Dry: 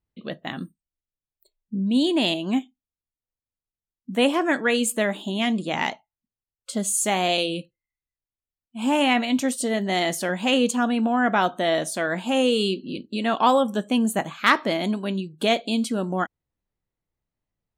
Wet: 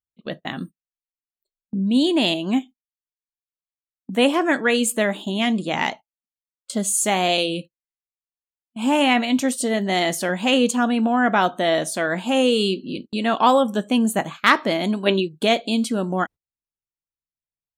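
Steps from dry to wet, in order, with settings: spectral gain 15.06–15.28, 280–4300 Hz +11 dB; gate -37 dBFS, range -22 dB; gain +2.5 dB

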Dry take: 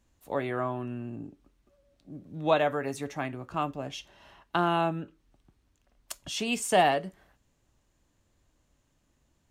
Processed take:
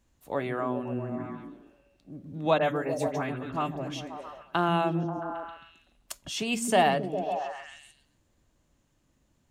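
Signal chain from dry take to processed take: 2.58–3.88 dispersion highs, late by 44 ms, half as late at 2300 Hz; on a send: delay with a stepping band-pass 0.134 s, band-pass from 170 Hz, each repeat 0.7 oct, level 0 dB

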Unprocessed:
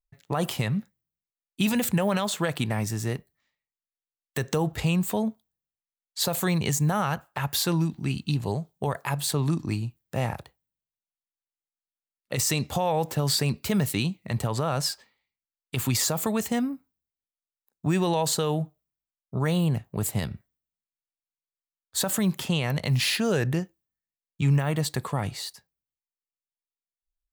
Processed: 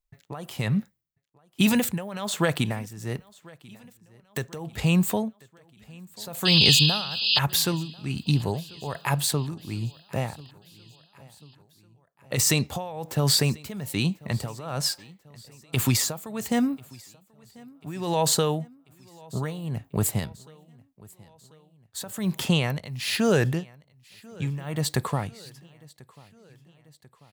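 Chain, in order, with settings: painted sound noise, 6.45–7.39, 2500–5100 Hz -22 dBFS; tremolo 1.2 Hz, depth 85%; feedback echo 1.041 s, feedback 57%, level -24 dB; gain +4 dB

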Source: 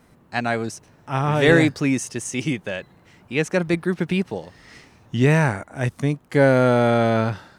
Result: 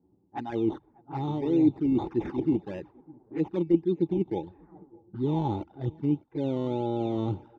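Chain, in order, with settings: reverse; compressor 8:1, threshold -25 dBFS, peak gain reduction 15 dB; reverse; spectral noise reduction 9 dB; on a send: feedback echo 0.603 s, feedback 47%, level -24 dB; on the sum: decimation with a swept rate 14×, swing 60% 1.7 Hz; HPF 47 Hz; low shelf 91 Hz +8.5 dB; low-pass opened by the level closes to 480 Hz, open at -26.5 dBFS; envelope flanger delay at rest 11.2 ms, full sweep at -25 dBFS; tape spacing loss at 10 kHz 31 dB; small resonant body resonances 330/830/3600 Hz, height 17 dB, ringing for 35 ms; gain -5.5 dB

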